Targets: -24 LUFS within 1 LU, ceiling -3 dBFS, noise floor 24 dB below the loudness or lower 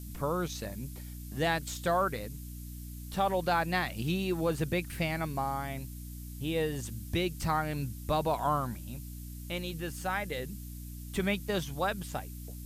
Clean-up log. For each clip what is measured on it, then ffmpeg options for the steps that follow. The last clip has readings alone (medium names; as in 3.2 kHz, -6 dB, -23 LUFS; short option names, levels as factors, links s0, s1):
hum 60 Hz; highest harmonic 300 Hz; hum level -41 dBFS; noise floor -43 dBFS; noise floor target -57 dBFS; loudness -33.0 LUFS; peak level -16.5 dBFS; loudness target -24.0 LUFS
-> -af "bandreject=f=60:t=h:w=6,bandreject=f=120:t=h:w=6,bandreject=f=180:t=h:w=6,bandreject=f=240:t=h:w=6,bandreject=f=300:t=h:w=6"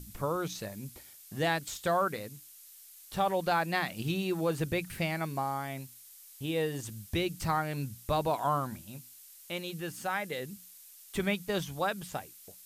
hum not found; noise floor -54 dBFS; noise floor target -57 dBFS
-> -af "afftdn=nr=6:nf=-54"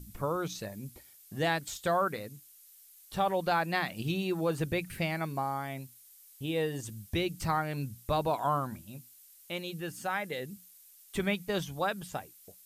noise floor -57 dBFS; loudness -33.0 LUFS; peak level -16.0 dBFS; loudness target -24.0 LUFS
-> -af "volume=2.82"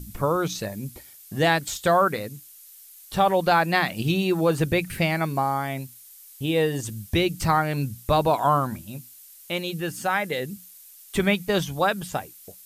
loudness -24.0 LUFS; peak level -7.0 dBFS; noise floor -48 dBFS